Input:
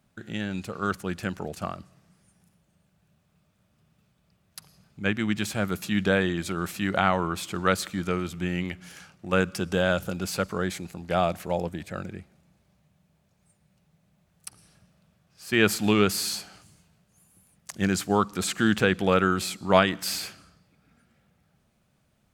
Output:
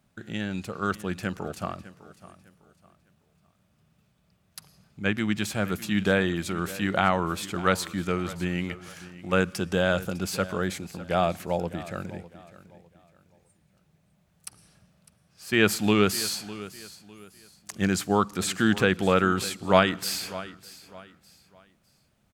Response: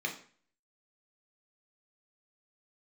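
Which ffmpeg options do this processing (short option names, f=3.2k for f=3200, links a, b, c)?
-af "aecho=1:1:604|1208|1812:0.141|0.0438|0.0136"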